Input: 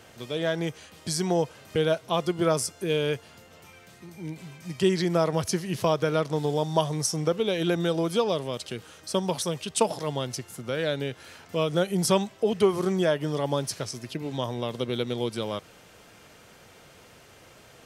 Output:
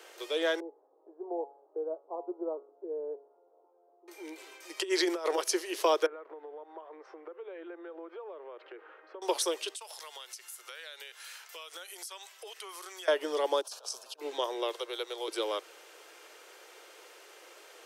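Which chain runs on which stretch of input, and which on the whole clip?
0.6–4.08 steep low-pass 880 Hz + resonator 140 Hz, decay 0.5 s, mix 70%
4.77–5.38 HPF 310 Hz 24 dB/oct + negative-ratio compressor -28 dBFS, ratio -0.5
6.06–9.22 LPF 1900 Hz 24 dB/oct + low shelf 180 Hz -11.5 dB + compressor 12:1, threshold -39 dBFS
9.75–13.08 HPF 1200 Hz + high shelf 7900 Hz +8.5 dB + compressor, threshold -41 dBFS
13.61–14.21 high shelf 6100 Hz -4 dB + negative-ratio compressor -37 dBFS, ratio -0.5 + fixed phaser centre 840 Hz, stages 4
14.72–15.28 HPF 670 Hz + dynamic EQ 2500 Hz, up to -5 dB, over -46 dBFS, Q 0.94
whole clip: steep high-pass 330 Hz 72 dB/oct; bell 670 Hz -4.5 dB 0.23 oct

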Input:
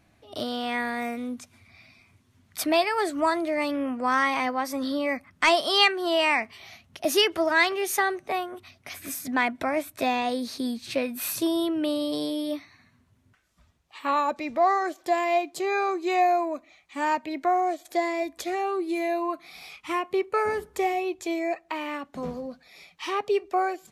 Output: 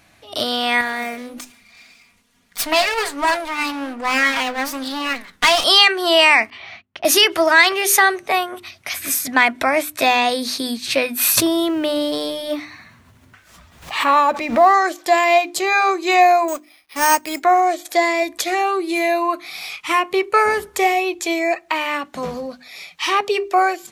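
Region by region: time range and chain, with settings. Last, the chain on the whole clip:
0.81–5.64 minimum comb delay 4.2 ms + flange 1.2 Hz, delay 4.5 ms, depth 8.2 ms, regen +82% + sustainer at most 130 dB/s
6.5–7.05 gate -53 dBFS, range -26 dB + LPF 2500 Hz
11.37–14.74 G.711 law mismatch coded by mu + high shelf 2500 Hz -8.5 dB + backwards sustainer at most 91 dB/s
16.48–17.43 G.711 law mismatch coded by A + careless resampling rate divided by 6×, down none, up hold
whole clip: tilt shelf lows -5 dB, about 770 Hz; notches 50/100/150/200/250/300/350/400 Hz; maximiser +10.5 dB; gain -1 dB

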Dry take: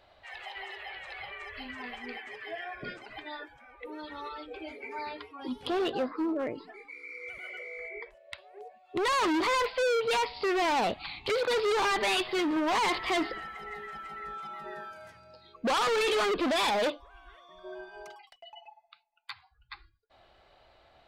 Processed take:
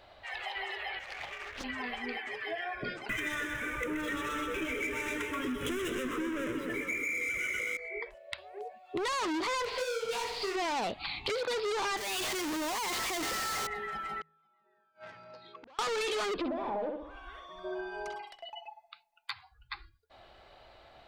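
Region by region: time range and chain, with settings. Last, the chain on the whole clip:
0.99–1.64 G.711 law mismatch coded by A + Doppler distortion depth 0.91 ms
3.09–7.77 sample leveller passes 5 + fixed phaser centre 1900 Hz, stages 4 + split-band echo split 1100 Hz, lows 0.221 s, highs 0.128 s, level -6 dB
9.65–10.56 sample leveller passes 2 + flutter echo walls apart 11.3 m, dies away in 0.62 s + detuned doubles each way 59 cents
11.97–13.67 low shelf 390 Hz -8 dB + compressor 2:1, threshold -34 dBFS + Schmitt trigger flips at -53.5 dBFS
14.21–15.79 BPF 130–4000 Hz + flipped gate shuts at -36 dBFS, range -34 dB + core saturation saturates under 1900 Hz
16.37–18.5 treble ducked by the level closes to 840 Hz, closed at -26 dBFS + darkening echo 65 ms, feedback 34%, low-pass 2600 Hz, level -4.5 dB
whole clip: de-hum 79.14 Hz, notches 2; dynamic EQ 6500 Hz, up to +5 dB, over -47 dBFS, Q 1; compressor 6:1, threshold -37 dBFS; gain +4.5 dB

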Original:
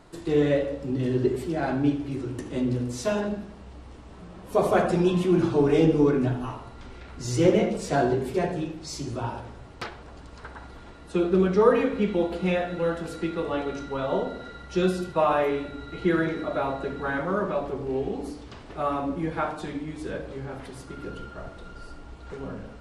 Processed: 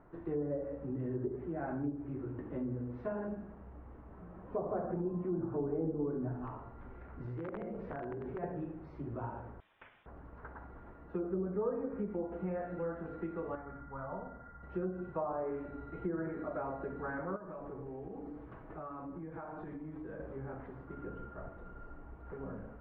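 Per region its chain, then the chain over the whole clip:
6.47–8.43 compressor 8:1, threshold -28 dBFS + wrapped overs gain 23.5 dB
9.6–10.06 Bessel high-pass 220 Hz + compressor 2:1, threshold -41 dBFS + inverted band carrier 3800 Hz
13.55–14.63 polynomial smoothing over 41 samples + bell 390 Hz -14.5 dB 1.4 oct
17.36–20.2 comb 6.3 ms, depth 38% + compressor 12:1, threshold -33 dBFS
whole clip: treble ducked by the level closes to 940 Hz, closed at -18 dBFS; compressor 2:1, threshold -31 dBFS; LPF 1700 Hz 24 dB/oct; gain -7 dB

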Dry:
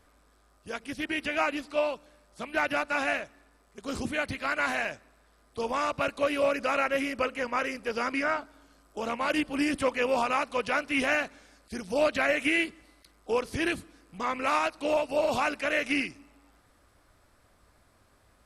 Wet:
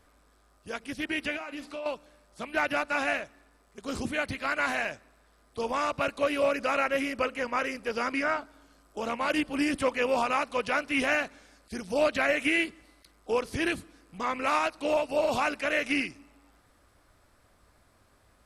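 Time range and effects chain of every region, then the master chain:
1.36–1.86 compressor 12:1, threshold -34 dBFS + doubler 47 ms -12.5 dB
whole clip: dry

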